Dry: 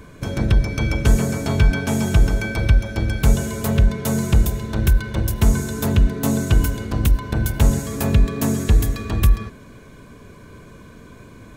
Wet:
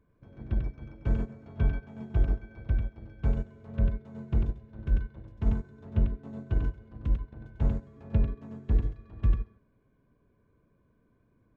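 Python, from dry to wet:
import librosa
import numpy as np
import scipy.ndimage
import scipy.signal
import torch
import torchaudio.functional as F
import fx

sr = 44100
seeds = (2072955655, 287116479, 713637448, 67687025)

y = fx.spacing_loss(x, sr, db_at_10k=40)
y = y + 10.0 ** (-4.0 / 20.0) * np.pad(y, (int(96 * sr / 1000.0), 0))[:len(y)]
y = fx.upward_expand(y, sr, threshold_db=-21.0, expansion=2.5)
y = F.gain(torch.from_numpy(y), -8.0).numpy()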